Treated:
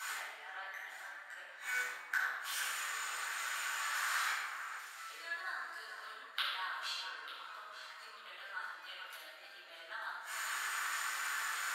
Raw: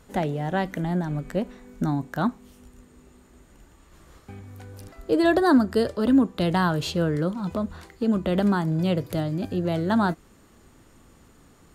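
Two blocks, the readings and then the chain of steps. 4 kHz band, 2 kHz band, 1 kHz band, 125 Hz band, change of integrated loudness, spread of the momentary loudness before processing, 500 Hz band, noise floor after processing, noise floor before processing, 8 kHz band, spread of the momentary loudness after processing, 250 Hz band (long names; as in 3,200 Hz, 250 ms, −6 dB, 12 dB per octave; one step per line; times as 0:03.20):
−3.5 dB, −1.5 dB, −11.5 dB, below −40 dB, −15.5 dB, 15 LU, −32.0 dB, −54 dBFS, −55 dBFS, +5.0 dB, 13 LU, below −40 dB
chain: spectral magnitudes quantised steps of 15 dB
downward compressor 10 to 1, threshold −25 dBFS, peak gain reduction 12 dB
gate with flip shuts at −36 dBFS, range −29 dB
four-pole ladder high-pass 1,200 Hz, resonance 35%
delay that swaps between a low-pass and a high-pass 447 ms, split 2,000 Hz, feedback 54%, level −8 dB
rectangular room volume 940 cubic metres, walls mixed, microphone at 7.7 metres
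level +17 dB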